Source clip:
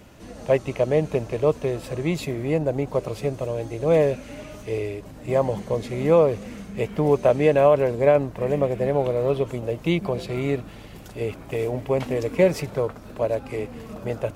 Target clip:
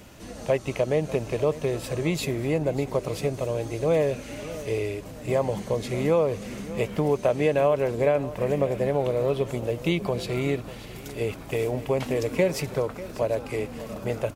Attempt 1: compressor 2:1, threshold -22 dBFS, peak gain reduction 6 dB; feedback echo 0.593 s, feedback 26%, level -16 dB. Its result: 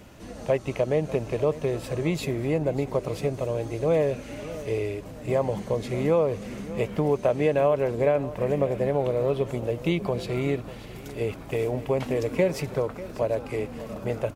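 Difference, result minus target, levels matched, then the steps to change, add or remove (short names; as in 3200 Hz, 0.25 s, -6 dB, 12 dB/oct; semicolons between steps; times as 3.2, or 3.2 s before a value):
4000 Hz band -3.0 dB
add after compressor: high shelf 2800 Hz +5.5 dB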